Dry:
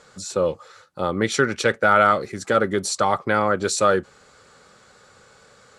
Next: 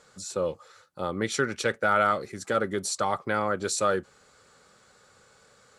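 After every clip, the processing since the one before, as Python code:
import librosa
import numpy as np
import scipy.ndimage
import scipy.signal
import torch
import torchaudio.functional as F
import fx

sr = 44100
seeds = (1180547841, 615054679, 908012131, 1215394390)

y = fx.high_shelf(x, sr, hz=9700.0, db=8.5)
y = F.gain(torch.from_numpy(y), -7.0).numpy()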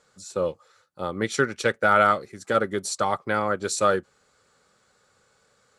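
y = fx.upward_expand(x, sr, threshold_db=-42.0, expansion=1.5)
y = F.gain(torch.from_numpy(y), 5.0).numpy()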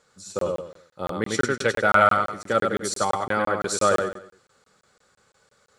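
y = fx.echo_feedback(x, sr, ms=98, feedback_pct=33, wet_db=-4.0)
y = fx.buffer_crackle(y, sr, first_s=0.39, period_s=0.17, block=1024, kind='zero')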